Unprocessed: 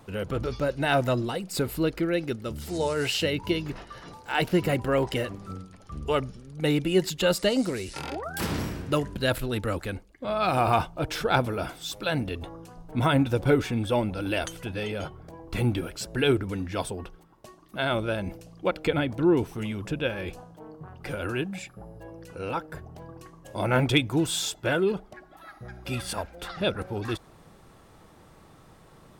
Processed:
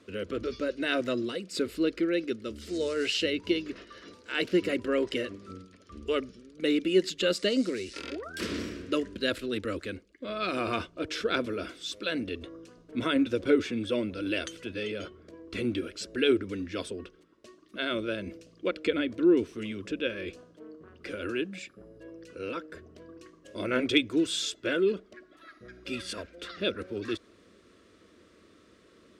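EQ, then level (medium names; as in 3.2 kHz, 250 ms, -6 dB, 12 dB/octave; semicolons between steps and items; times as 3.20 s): band-pass 100–6100 Hz; static phaser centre 340 Hz, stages 4; 0.0 dB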